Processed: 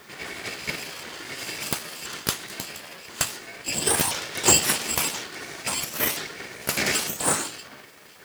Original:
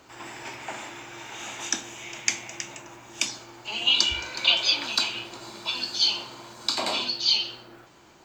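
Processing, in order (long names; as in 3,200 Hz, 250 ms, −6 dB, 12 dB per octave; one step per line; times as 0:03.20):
pitch shifter swept by a sawtooth +9 semitones, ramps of 1,028 ms
hollow resonant body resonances 710/1,100/3,800 Hz, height 17 dB, ringing for 35 ms
full-wave rectification
high-pass filter 140 Hz 12 dB per octave
in parallel at −11 dB: bit-depth reduction 8 bits, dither triangular
on the sum: level +1.5 dB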